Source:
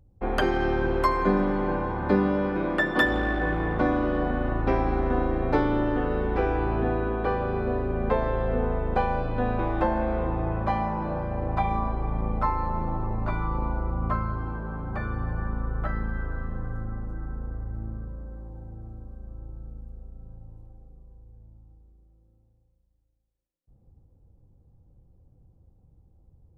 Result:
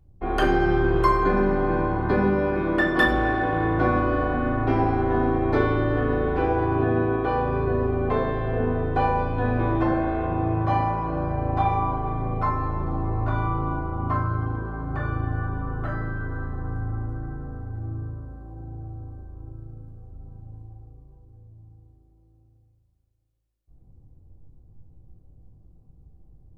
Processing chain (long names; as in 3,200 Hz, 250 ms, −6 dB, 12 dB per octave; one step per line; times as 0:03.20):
rectangular room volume 760 cubic metres, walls furnished, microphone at 3.3 metres
level −2.5 dB